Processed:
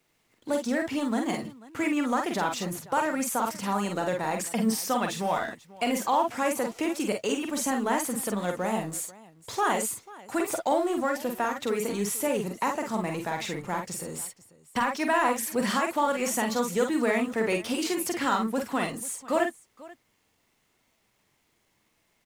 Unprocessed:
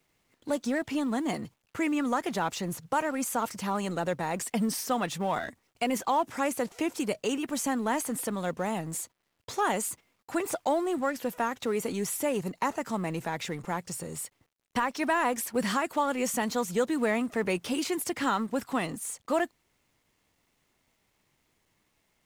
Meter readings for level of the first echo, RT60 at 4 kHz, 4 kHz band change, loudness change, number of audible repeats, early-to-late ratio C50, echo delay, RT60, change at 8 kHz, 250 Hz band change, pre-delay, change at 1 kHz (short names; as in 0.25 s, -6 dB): -5.0 dB, none, +2.5 dB, +2.0 dB, 2, none, 45 ms, none, +2.5 dB, +1.5 dB, none, +2.5 dB